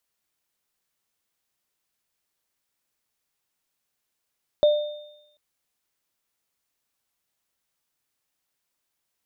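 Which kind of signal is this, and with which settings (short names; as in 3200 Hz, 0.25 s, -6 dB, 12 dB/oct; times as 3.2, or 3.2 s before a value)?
sine partials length 0.74 s, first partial 596 Hz, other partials 3630 Hz, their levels -18 dB, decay 0.82 s, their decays 1.24 s, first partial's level -12 dB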